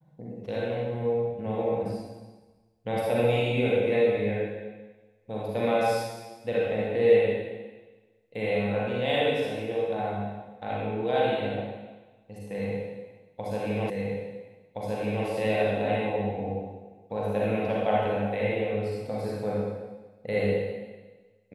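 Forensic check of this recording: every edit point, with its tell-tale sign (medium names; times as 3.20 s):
13.90 s: repeat of the last 1.37 s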